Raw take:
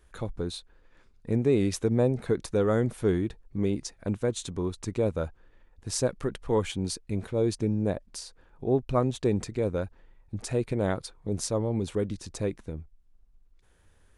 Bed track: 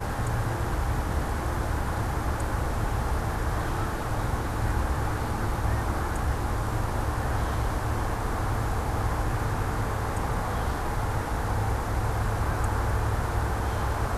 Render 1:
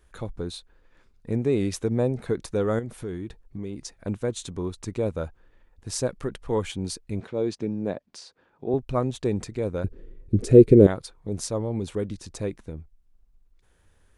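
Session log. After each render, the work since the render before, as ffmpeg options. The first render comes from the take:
-filter_complex "[0:a]asettb=1/sr,asplit=3[a][b][c];[a]atrim=end=2.794[d];[b]atrim=start=2.79:end=3.95,asetpts=PTS-STARTPTS,afade=t=in:d=0.004:c=qsin,afade=t=out:st=1.156:d=0.004:c=qsin,acompressor=threshold=-31dB:ratio=3:attack=3.2:release=140:knee=1:detection=peak[e];[c]atrim=start=3.946[f];[d][e]acrossfade=d=0.004:c1=hsin:c2=qsin[g];[g][f]acrossfade=d=0.004:c1=qsin:c2=hsin,asettb=1/sr,asplit=3[h][i][j];[h]atrim=end=7.204[k];[i]atrim=start=7.2:end=8.74,asetpts=PTS-STARTPTS,afade=t=in:d=0.004:c=qsin,afade=t=out:st=1.536:d=0.004:c=qsin,highpass=160,lowpass=5.4k[l];[j]atrim=start=8.736[m];[k][l]acrossfade=d=0.004:c1=hsin:c2=qsin[n];[n][m]acrossfade=d=0.004:c1=qsin:c2=hsin,asettb=1/sr,asplit=3[o][p][q];[o]atrim=end=9.844[r];[p]atrim=start=9.84:end=10.87,asetpts=PTS-STARTPTS,afade=t=in:d=0.004:c=qsin,afade=t=out:st=1.026:d=0.004:c=qsin,lowshelf=f=580:t=q:w=3:g=12[s];[q]atrim=start=10.866[t];[r][s]acrossfade=d=0.004:c1=hsin:c2=qsin[u];[u][t]acrossfade=d=0.004:c1=qsin:c2=hsin"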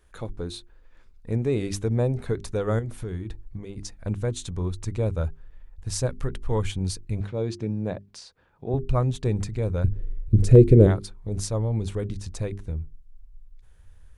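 -af "bandreject=f=50:t=h:w=6,bandreject=f=100:t=h:w=6,bandreject=f=150:t=h:w=6,bandreject=f=200:t=h:w=6,bandreject=f=250:t=h:w=6,bandreject=f=300:t=h:w=6,bandreject=f=350:t=h:w=6,bandreject=f=400:t=h:w=6,asubboost=boost=5:cutoff=120"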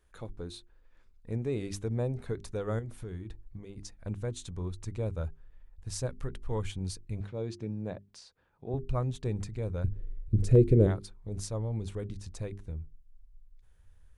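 -af "volume=-8dB"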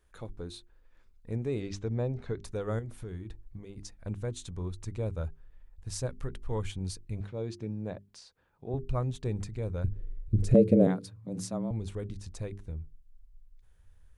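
-filter_complex "[0:a]asettb=1/sr,asplit=3[a][b][c];[a]atrim=end=1.604[d];[b]atrim=start=1.6:end=2.44,asetpts=PTS-STARTPTS,afade=t=in:d=0.004:c=qsin,afade=t=out:st=0.836:d=0.004:c=qsin,lowpass=f=6.4k:w=0.5412,lowpass=f=6.4k:w=1.3066[e];[c]atrim=start=2.436[f];[d][e]acrossfade=d=0.004:c1=hsin:c2=qsin[g];[g][f]acrossfade=d=0.004:c1=qsin:c2=hsin,asettb=1/sr,asplit=3[h][i][j];[h]atrim=end=10.544[k];[i]atrim=start=10.54:end=11.71,asetpts=PTS-STARTPTS,afade=t=in:d=0.004:c=qsin,afade=t=out:st=1.166:d=0.004:c=qsin,afreqshift=87[l];[j]atrim=start=11.706[m];[k][l]acrossfade=d=0.004:c1=hsin:c2=qsin[n];[n][m]acrossfade=d=0.004:c1=qsin:c2=hsin"

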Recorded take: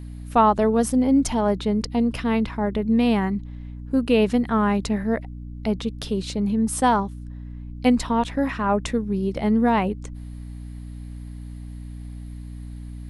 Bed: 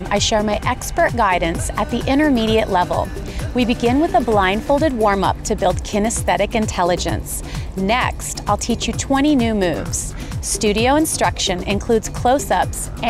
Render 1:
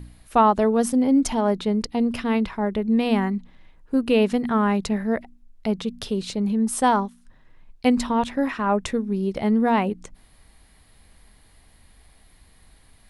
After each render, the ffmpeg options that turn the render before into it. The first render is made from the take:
-af "bandreject=f=60:t=h:w=4,bandreject=f=120:t=h:w=4,bandreject=f=180:t=h:w=4,bandreject=f=240:t=h:w=4,bandreject=f=300:t=h:w=4"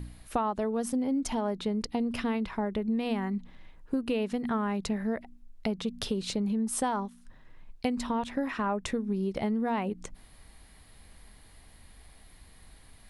-af "acompressor=threshold=-27dB:ratio=6"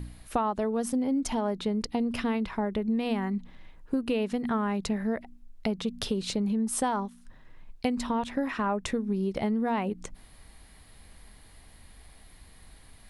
-af "volume=1.5dB"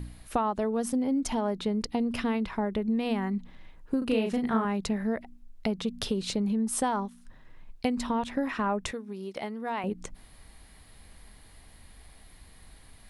-filter_complex "[0:a]asettb=1/sr,asplit=3[a][b][c];[a]atrim=end=3.984[d];[b]atrim=start=3.98:end=4.65,asetpts=PTS-STARTPTS,afade=t=in:d=0.004:c=qsin,afade=t=out:st=0.666:d=0.004:c=qsin,asplit=2[e][f];[f]adelay=36,volume=-3.5dB[g];[e][g]amix=inputs=2:normalize=0,atrim=end_sample=29547[h];[c]atrim=start=4.646[i];[d][h]acrossfade=d=0.004:c1=hsin:c2=qsin[j];[j][i]acrossfade=d=0.004:c1=qsin:c2=hsin,asettb=1/sr,asplit=3[k][l][m];[k]atrim=end=8.914[n];[l]atrim=start=8.91:end=9.84,asetpts=PTS-STARTPTS,afade=t=in:d=0.004:c=qsin,afade=t=out:st=0.926:d=0.004:c=qsin,highpass=f=720:p=1[o];[m]atrim=start=9.836[p];[n][o]acrossfade=d=0.004:c1=hsin:c2=qsin[q];[q][p]acrossfade=d=0.004:c1=qsin:c2=hsin"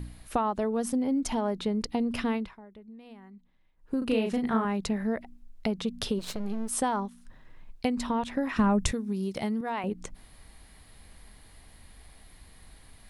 -filter_complex "[0:a]asplit=3[a][b][c];[a]afade=t=out:st=6.18:d=0.02[d];[b]aeval=exprs='max(val(0),0)':c=same,afade=t=in:st=6.18:d=0.02,afade=t=out:st=6.68:d=0.02[e];[c]afade=t=in:st=6.68:d=0.02[f];[d][e][f]amix=inputs=3:normalize=0,asettb=1/sr,asplit=3[g][h][i];[g]atrim=end=8.564[j];[h]atrim=start=8.56:end=9.61,asetpts=PTS-STARTPTS,afade=t=in:d=0.004:c=qsin,afade=t=out:st=1.046:d=0.004:c=qsin,bass=f=250:g=14,treble=f=4k:g=8[k];[i]atrim=start=9.606[l];[j][k]acrossfade=d=0.004:c1=hsin:c2=qsin[m];[m][l]acrossfade=d=0.004:c1=qsin:c2=hsin,asplit=3[n][o][p];[n]atrim=end=2.56,asetpts=PTS-STARTPTS,afade=t=out:st=2.33:d=0.23:silence=0.1[q];[o]atrim=start=2.56:end=3.77,asetpts=PTS-STARTPTS,volume=-20dB[r];[p]atrim=start=3.77,asetpts=PTS-STARTPTS,afade=t=in:d=0.23:silence=0.1[s];[q][r][s]concat=n=3:v=0:a=1"

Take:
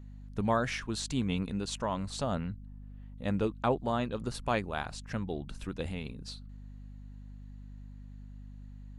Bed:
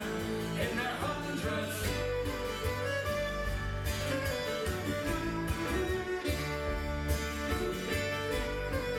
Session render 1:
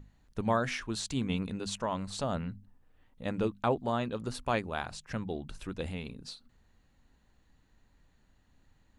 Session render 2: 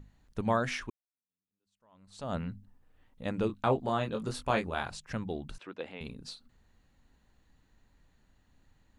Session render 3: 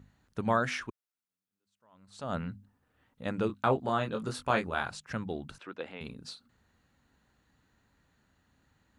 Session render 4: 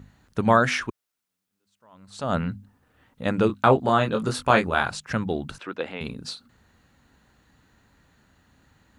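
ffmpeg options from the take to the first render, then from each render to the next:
-af "bandreject=f=50:t=h:w=6,bandreject=f=100:t=h:w=6,bandreject=f=150:t=h:w=6,bandreject=f=200:t=h:w=6,bandreject=f=250:t=h:w=6"
-filter_complex "[0:a]asettb=1/sr,asplit=3[a][b][c];[a]atrim=end=3.474[d];[b]atrim=start=3.47:end=4.9,asetpts=PTS-STARTPTS,afade=t=in:d=0.004:c=qsin,afade=t=out:st=1.426:d=0.004:c=qsin,asplit=2[e][f];[f]adelay=23,volume=-5dB[g];[e][g]amix=inputs=2:normalize=0,atrim=end_sample=63063[h];[c]atrim=start=4.896[i];[d][h]acrossfade=d=0.004:c1=hsin:c2=qsin[j];[j][i]acrossfade=d=0.004:c1=qsin:c2=hsin,asettb=1/sr,asplit=3[k][l][m];[k]atrim=end=5.584[n];[l]atrim=start=5.58:end=6.01,asetpts=PTS-STARTPTS,afade=t=in:d=0.004:c=qsin,afade=t=out:st=0.426:d=0.004:c=qsin,highpass=370,lowpass=3.1k[o];[m]atrim=start=6.006[p];[n][o]acrossfade=d=0.004:c1=hsin:c2=qsin[q];[q][p]acrossfade=d=0.004:c1=qsin:c2=hsin,asplit=2[r][s];[r]atrim=end=0.9,asetpts=PTS-STARTPTS,afade=t=out:st=0.896:d=0.004:c=hsin[t];[s]atrim=start=0.9,asetpts=PTS-STARTPTS,afade=t=in:d=1.44:c=exp[u];[t][u]concat=n=2:v=0:a=1"
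-af "highpass=74,equalizer=f=1.4k:w=2.6:g=5"
-af "volume=9.5dB"

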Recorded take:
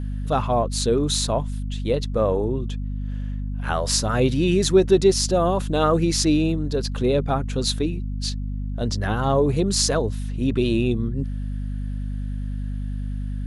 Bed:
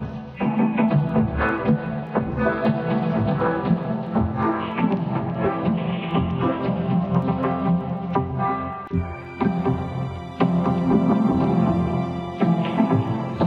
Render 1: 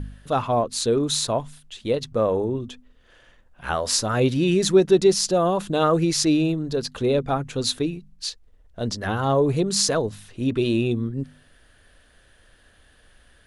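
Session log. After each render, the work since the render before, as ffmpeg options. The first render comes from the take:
-af "bandreject=f=50:t=h:w=4,bandreject=f=100:t=h:w=4,bandreject=f=150:t=h:w=4,bandreject=f=200:t=h:w=4,bandreject=f=250:t=h:w=4"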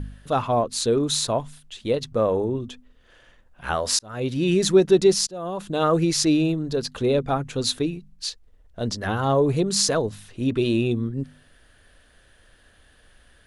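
-filter_complex "[0:a]asplit=3[a][b][c];[a]atrim=end=3.99,asetpts=PTS-STARTPTS,afade=t=out:st=3.986:d=0.004:c=hsin[d];[b]atrim=start=3.99:end=5.27,asetpts=PTS-STARTPTS,afade=t=in:d=0.54,afade=t=out:st=1.276:d=0.004:c=hsin:silence=0.0707946[e];[c]atrim=start=5.27,asetpts=PTS-STARTPTS,afade=t=in:d=0.68:silence=0.0707946[f];[d][e][f]concat=n=3:v=0:a=1"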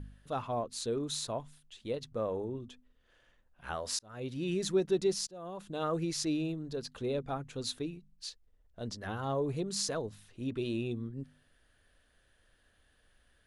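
-af "volume=-13dB"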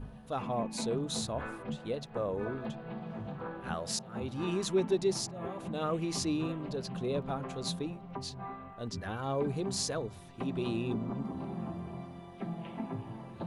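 -filter_complex "[1:a]volume=-19.5dB[a];[0:a][a]amix=inputs=2:normalize=0"

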